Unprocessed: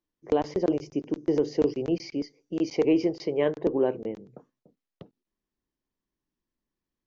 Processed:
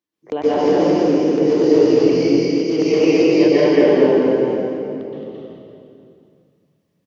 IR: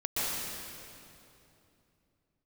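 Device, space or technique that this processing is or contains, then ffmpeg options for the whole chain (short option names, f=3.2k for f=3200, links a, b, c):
stadium PA: -filter_complex "[0:a]highpass=130,equalizer=f=2.8k:t=o:w=1.8:g=3.5,aecho=1:1:218.7|253.6:0.794|0.282[a];[1:a]atrim=start_sample=2205[b];[a][b]afir=irnorm=-1:irlink=0,volume=1dB"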